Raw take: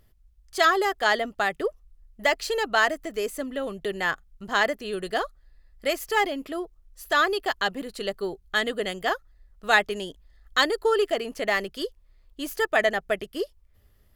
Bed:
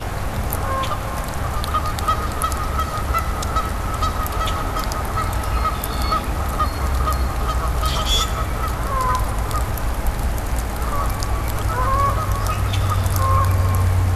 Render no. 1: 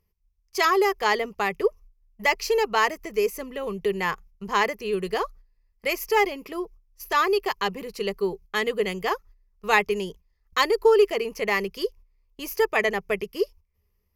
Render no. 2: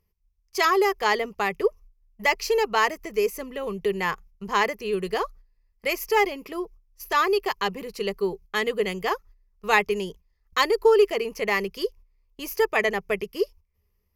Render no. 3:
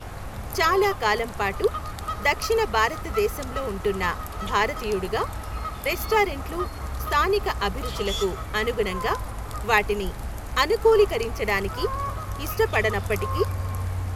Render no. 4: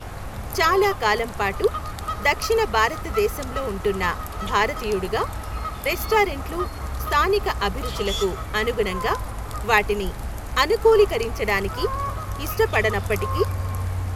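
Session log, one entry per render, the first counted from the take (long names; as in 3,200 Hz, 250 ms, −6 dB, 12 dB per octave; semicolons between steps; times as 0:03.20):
noise gate −46 dBFS, range −13 dB; EQ curve with evenly spaced ripples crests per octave 0.81, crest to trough 12 dB
no processing that can be heard
mix in bed −11 dB
level +2 dB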